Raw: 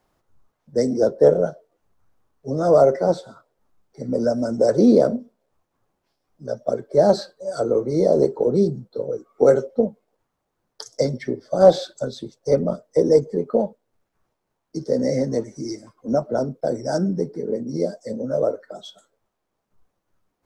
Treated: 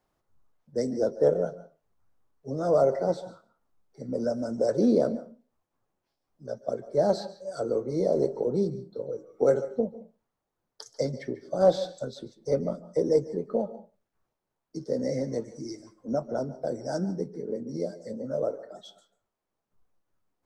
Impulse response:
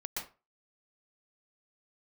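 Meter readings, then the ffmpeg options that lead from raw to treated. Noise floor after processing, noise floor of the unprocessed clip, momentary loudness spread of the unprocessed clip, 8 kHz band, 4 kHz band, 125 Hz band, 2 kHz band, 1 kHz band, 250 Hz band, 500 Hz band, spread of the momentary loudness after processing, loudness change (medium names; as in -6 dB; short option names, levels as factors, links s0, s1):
-84 dBFS, -77 dBFS, 16 LU, no reading, -8.0 dB, -7.5 dB, -8.0 dB, -8.0 dB, -8.0 dB, -8.0 dB, 17 LU, -8.0 dB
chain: -filter_complex "[0:a]asplit=2[s0][s1];[1:a]atrim=start_sample=2205,adelay=22[s2];[s1][s2]afir=irnorm=-1:irlink=0,volume=0.178[s3];[s0][s3]amix=inputs=2:normalize=0,volume=0.398"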